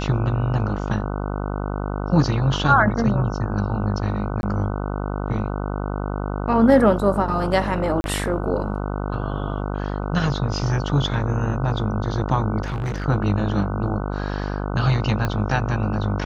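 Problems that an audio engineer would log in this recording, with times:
buzz 50 Hz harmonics 30 -26 dBFS
4.41–4.43 gap 21 ms
8.01–8.04 gap 31 ms
12.62–13.06 clipped -22 dBFS
15.25 pop -10 dBFS

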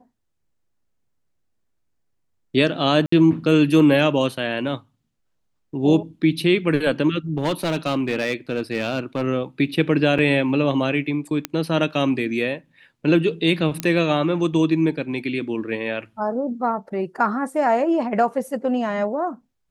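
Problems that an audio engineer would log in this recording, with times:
3.06–3.12 gap 64 ms
7.37–9.22 clipped -16.5 dBFS
10.18–10.19 gap 5.2 ms
11.45 pop -7 dBFS
13.8 pop -8 dBFS

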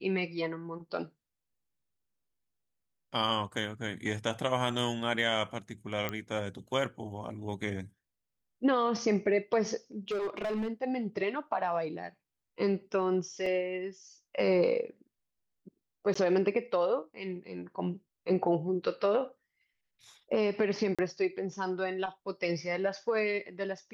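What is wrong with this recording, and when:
6.09 pop -18 dBFS
10.08–10.72 clipped -29 dBFS
13.46 gap 3.7 ms
16.14–16.16 gap 15 ms
20.95–20.99 gap 36 ms

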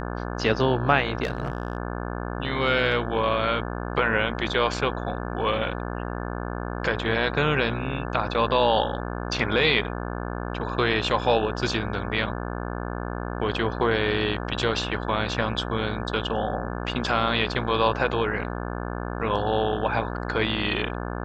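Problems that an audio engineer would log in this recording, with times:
buzz 60 Hz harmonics 29 -31 dBFS
1.23–1.77 clipped -20 dBFS

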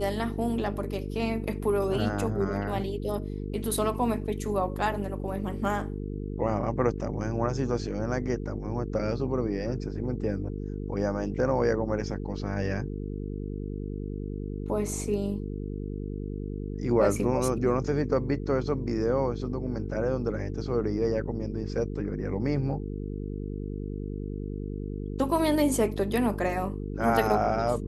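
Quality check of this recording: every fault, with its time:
buzz 50 Hz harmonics 9 -34 dBFS

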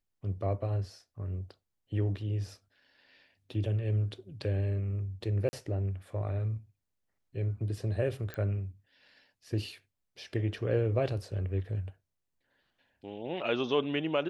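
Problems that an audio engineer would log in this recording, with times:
5.49–5.53 gap 40 ms
8.34 pop -24 dBFS

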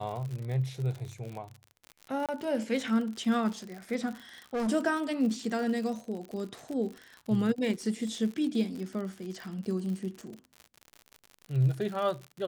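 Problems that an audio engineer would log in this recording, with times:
crackle 71/s -36 dBFS
2.26–2.29 gap 27 ms
4.54–4.69 clipped -28 dBFS

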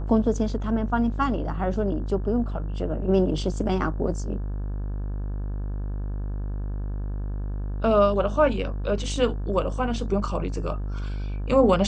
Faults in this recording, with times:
buzz 50 Hz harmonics 35 -29 dBFS

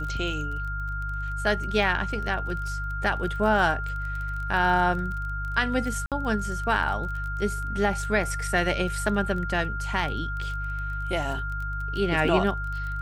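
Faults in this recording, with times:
crackle 21/s -32 dBFS
hum 50 Hz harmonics 3 -32 dBFS
tone 1400 Hz -32 dBFS
6.06–6.12 gap 57 ms

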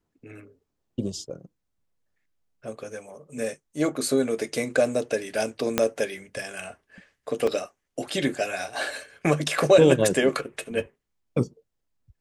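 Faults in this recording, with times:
5.78 pop -5 dBFS
7.47 gap 3.9 ms

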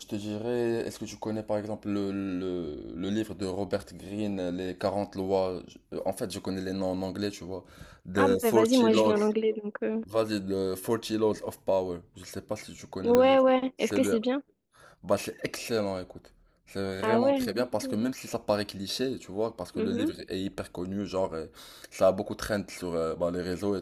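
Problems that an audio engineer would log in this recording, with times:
13.15 pop -9 dBFS

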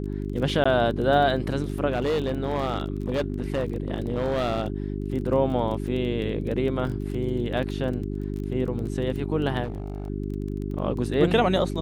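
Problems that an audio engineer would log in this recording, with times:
crackle 20/s -32 dBFS
hum 50 Hz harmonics 8 -30 dBFS
0.64–0.66 gap 15 ms
1.89–4.68 clipped -20.5 dBFS
6.87 gap 2.8 ms
9.64–10.1 clipped -27 dBFS

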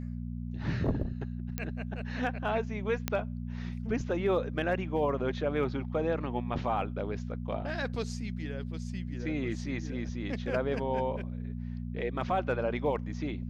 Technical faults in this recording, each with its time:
hum 60 Hz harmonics 4 -37 dBFS
1.58 pop -18 dBFS
3.08 pop -13 dBFS

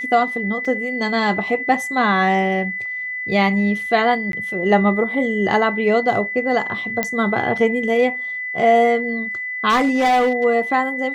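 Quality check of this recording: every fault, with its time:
tone 2000 Hz -24 dBFS
0.65 gap 2.6 ms
4.32–4.33 gap 12 ms
7.03 pop -5 dBFS
9.69–10.45 clipped -12.5 dBFS

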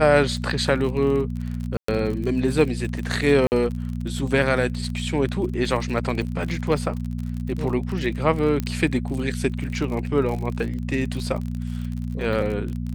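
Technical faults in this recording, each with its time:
crackle 45/s -29 dBFS
hum 60 Hz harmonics 4 -28 dBFS
1.77–1.88 gap 0.114 s
3.47–3.52 gap 49 ms
8.6 pop -12 dBFS

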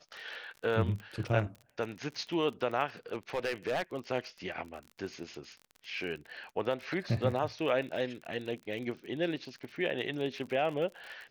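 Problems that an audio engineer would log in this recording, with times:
crackle 41/s -40 dBFS
3.12–3.82 clipped -27.5 dBFS

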